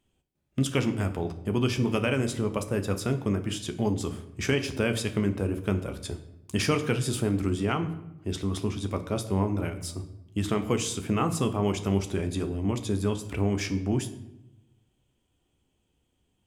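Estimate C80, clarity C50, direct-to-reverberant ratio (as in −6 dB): 15.0 dB, 12.0 dB, 7.0 dB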